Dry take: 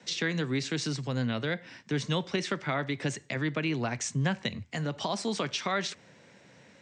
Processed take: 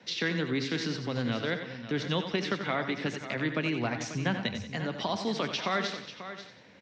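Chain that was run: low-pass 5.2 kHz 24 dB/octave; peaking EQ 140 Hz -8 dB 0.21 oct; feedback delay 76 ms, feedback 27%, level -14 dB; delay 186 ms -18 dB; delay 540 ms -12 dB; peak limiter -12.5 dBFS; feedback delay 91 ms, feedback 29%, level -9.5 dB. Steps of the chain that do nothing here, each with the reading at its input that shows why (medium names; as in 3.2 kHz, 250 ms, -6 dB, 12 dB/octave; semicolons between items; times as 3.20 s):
peak limiter -12.5 dBFS: peak at its input -15.5 dBFS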